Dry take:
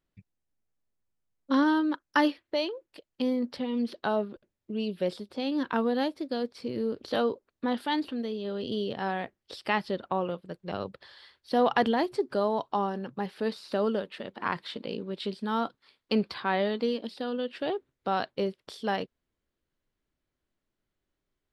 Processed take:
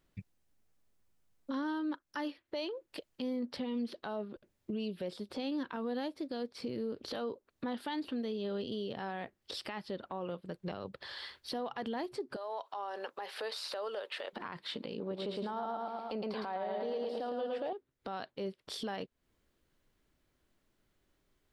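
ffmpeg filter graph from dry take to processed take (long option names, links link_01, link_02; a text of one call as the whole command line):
ffmpeg -i in.wav -filter_complex "[0:a]asettb=1/sr,asplit=3[link_01][link_02][link_03];[link_01]atrim=end=12.364[link_04];[link_02]atrim=start=12.36:end=14.33,asetpts=PTS-STARTPTS,afade=type=in:duration=0.004:curve=qsin,afade=type=out:start_time=1.966:duration=0.004:curve=qsin,highpass=frequency=500:width=0.5412,highpass=frequency=500:width=1.3066,acompressor=threshold=-37dB:ratio=4:attack=3.2:release=140:knee=1:detection=peak[link_05];[link_03]atrim=start=14.326[link_06];[link_04][link_05]acrossfade=duration=0.004:curve1=hsin:curve2=qsin[link_07];[link_07][link_06]acrossfade=duration=0.004:curve1=qsin:curve2=hsin,asettb=1/sr,asplit=3[link_08][link_09][link_10];[link_08]atrim=end=15.004[link_11];[link_09]atrim=start=15:end=17.73,asetpts=PTS-STARTPTS,afade=type=in:duration=0.004:curve=qsin,afade=type=out:start_time=2.726:duration=0.004:curve=qsin,equalizer=frequency=710:width=1:gain=14,aecho=1:1:111|222|333|444|555|666:0.708|0.319|0.143|0.0645|0.029|0.0131,atrim=end_sample=120393[link_12];[link_10]atrim=start=17.726[link_13];[link_11][link_12]acrossfade=duration=0.004:curve1=hsin:curve2=qsin[link_14];[link_14][link_13]acrossfade=duration=0.004:curve1=qsin:curve2=hsin,acompressor=threshold=-44dB:ratio=4,alimiter=level_in=13.5dB:limit=-24dB:level=0:latency=1:release=27,volume=-13.5dB,volume=8dB" out.wav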